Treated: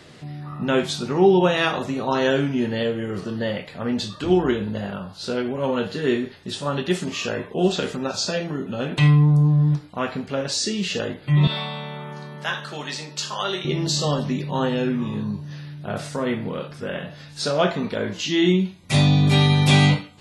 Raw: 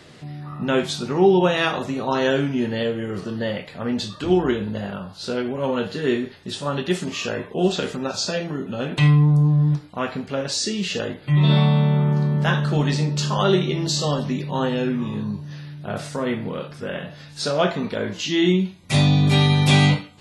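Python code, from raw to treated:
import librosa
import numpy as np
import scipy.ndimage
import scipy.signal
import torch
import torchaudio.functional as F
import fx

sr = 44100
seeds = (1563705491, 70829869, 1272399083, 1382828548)

y = fx.highpass(x, sr, hz=1300.0, slope=6, at=(11.47, 13.65))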